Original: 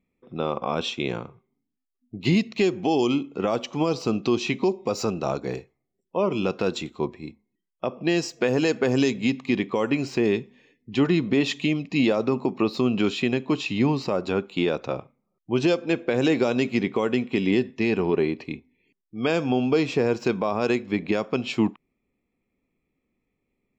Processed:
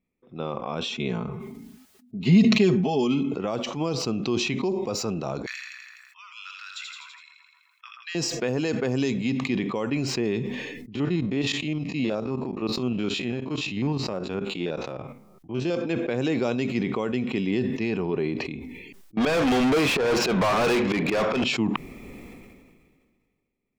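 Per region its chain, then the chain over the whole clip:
0.9–3.34 HPF 42 Hz + tone controls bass +5 dB, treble -1 dB + comb 4.7 ms, depth 74%
5.46–8.15 steep high-pass 1300 Hz 48 dB/oct + split-band echo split 1600 Hz, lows 0.132 s, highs 83 ms, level -7 dB
10.95–15.76 stepped spectrum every 50 ms + transient shaper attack -2 dB, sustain -10 dB
19.17–21.44 auto swell 0.182 s + overdrive pedal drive 38 dB, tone 3200 Hz, clips at -10 dBFS
whole clip: dynamic EQ 140 Hz, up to +4 dB, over -35 dBFS, Q 1.2; sustainer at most 31 dB/s; gain -5.5 dB

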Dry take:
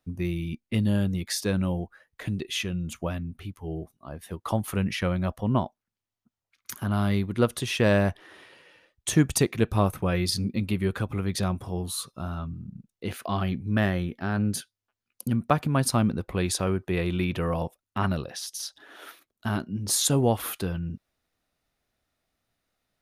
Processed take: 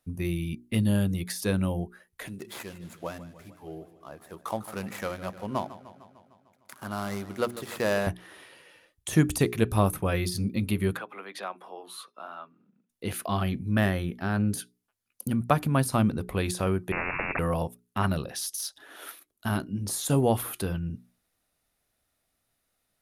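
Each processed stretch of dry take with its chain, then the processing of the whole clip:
2.27–8.07 median filter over 15 samples + HPF 530 Hz 6 dB/oct + warbling echo 0.151 s, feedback 64%, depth 97 cents, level -15.5 dB
10.97–12.9 HPF 240 Hz 24 dB/oct + three-band isolator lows -16 dB, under 540 Hz, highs -22 dB, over 3300 Hz
16.92–17.39 inverted band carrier 2500 Hz + spectral compressor 10:1
whole clip: notches 60/120/180/240/300/360/420 Hz; de-esser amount 70%; bell 11000 Hz +11 dB 0.81 oct

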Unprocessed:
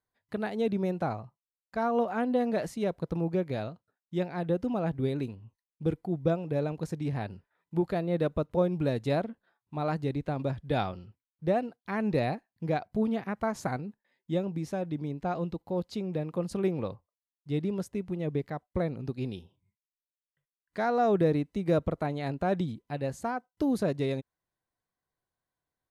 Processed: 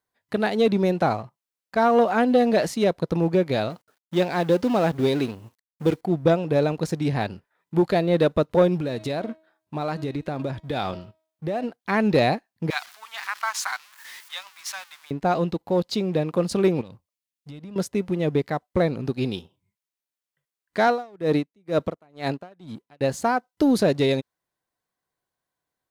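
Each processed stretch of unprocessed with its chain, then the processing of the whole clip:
3.7–6.01 G.711 law mismatch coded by mu + low shelf 130 Hz -8.5 dB
8.77–11.64 de-hum 317.7 Hz, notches 28 + compressor 10:1, threshold -32 dBFS
12.7–15.11 zero-crossing step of -44.5 dBFS + steep high-pass 990 Hz
16.81–17.76 band shelf 740 Hz -10 dB 2.5 oct + compressor 10:1, threshold -43 dBFS
20.87–23.01 HPF 120 Hz 6 dB/oct + dB-linear tremolo 2.1 Hz, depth 30 dB
whole clip: dynamic EQ 4400 Hz, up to +5 dB, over -56 dBFS, Q 1.1; sample leveller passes 1; low shelf 120 Hz -10 dB; gain +7 dB

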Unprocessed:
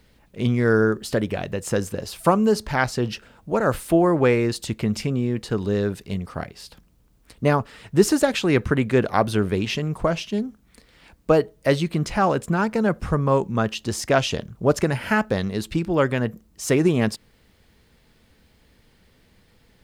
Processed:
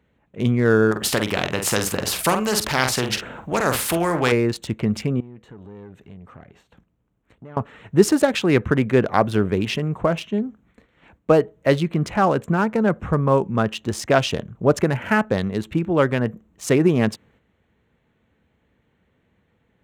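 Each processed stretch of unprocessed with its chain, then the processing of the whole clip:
0.91–4.32 doubler 47 ms -9 dB + spectral compressor 2:1
5.2–7.57 compressor 3:1, threshold -41 dBFS + tube stage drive 36 dB, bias 0.45
whole clip: Wiener smoothing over 9 samples; HPF 73 Hz; gate -56 dBFS, range -7 dB; gain +2 dB

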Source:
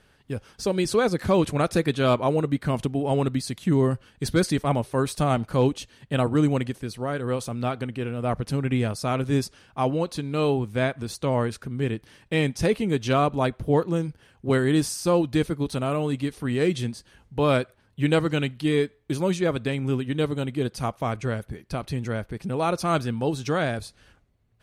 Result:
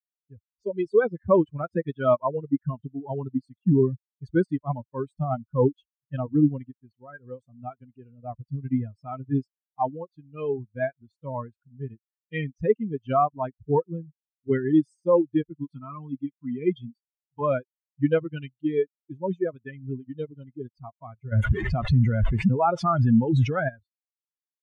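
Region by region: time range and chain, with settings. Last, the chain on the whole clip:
15.58–17.41 HPF 130 Hz + comb 0.9 ms, depth 51%
21.32–23.69 delta modulation 64 kbps, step -36.5 dBFS + fast leveller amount 100%
whole clip: per-bin expansion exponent 3; LPF 1500 Hz 12 dB/oct; gain +7 dB

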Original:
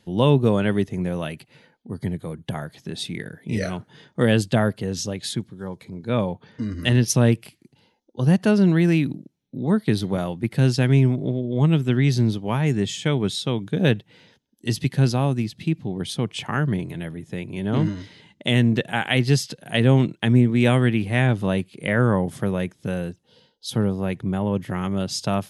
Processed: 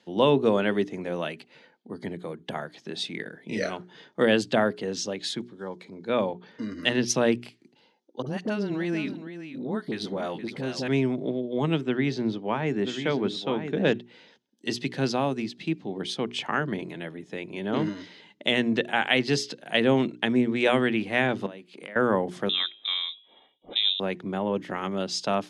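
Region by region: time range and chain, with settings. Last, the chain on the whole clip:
8.22–10.88 dispersion highs, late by 45 ms, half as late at 720 Hz + compressor 2:1, threshold -25 dBFS + echo 0.469 s -11 dB
11.81–13.93 LPF 2400 Hz 6 dB/oct + echo 0.987 s -8.5 dB
21.46–21.96 HPF 170 Hz + compressor 10:1, threshold -35 dBFS
22.49–24 bell 140 Hz -8.5 dB 0.85 oct + de-hum 107.2 Hz, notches 13 + inverted band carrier 3800 Hz
whole clip: three-band isolator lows -23 dB, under 210 Hz, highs -22 dB, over 7200 Hz; notches 60/120/180/240/300/360/420 Hz

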